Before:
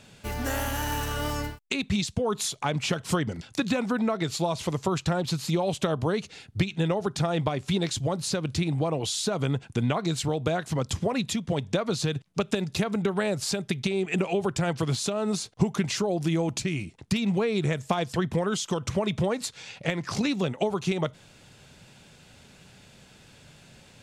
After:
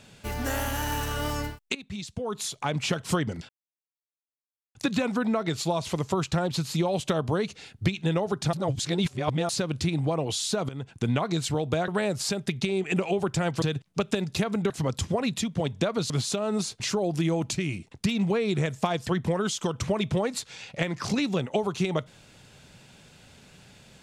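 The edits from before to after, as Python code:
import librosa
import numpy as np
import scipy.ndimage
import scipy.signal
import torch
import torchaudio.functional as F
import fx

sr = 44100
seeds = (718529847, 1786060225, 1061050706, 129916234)

y = fx.edit(x, sr, fx.fade_in_from(start_s=1.75, length_s=1.07, floor_db=-16.5),
    fx.insert_silence(at_s=3.49, length_s=1.26),
    fx.reverse_span(start_s=7.27, length_s=0.96),
    fx.fade_in_from(start_s=9.43, length_s=0.37, floor_db=-16.5),
    fx.swap(start_s=10.62, length_s=1.4, other_s=13.1, other_length_s=1.74),
    fx.cut(start_s=15.54, length_s=0.33), tone=tone)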